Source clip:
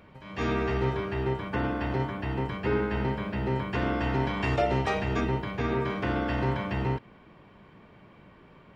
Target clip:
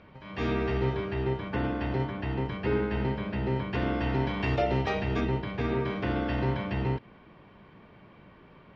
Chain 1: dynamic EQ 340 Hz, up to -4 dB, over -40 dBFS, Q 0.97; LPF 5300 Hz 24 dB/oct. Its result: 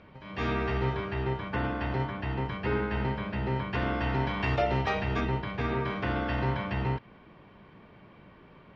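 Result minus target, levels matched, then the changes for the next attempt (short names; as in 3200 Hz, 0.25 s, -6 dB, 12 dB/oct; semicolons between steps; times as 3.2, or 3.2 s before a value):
1000 Hz band +3.0 dB
change: dynamic EQ 1200 Hz, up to -4 dB, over -40 dBFS, Q 0.97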